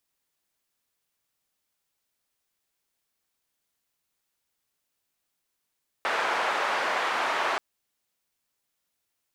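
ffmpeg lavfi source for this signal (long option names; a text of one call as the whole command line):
ffmpeg -f lavfi -i "anoisesrc=color=white:duration=1.53:sample_rate=44100:seed=1,highpass=frequency=700,lowpass=frequency=1300,volume=-7.4dB" out.wav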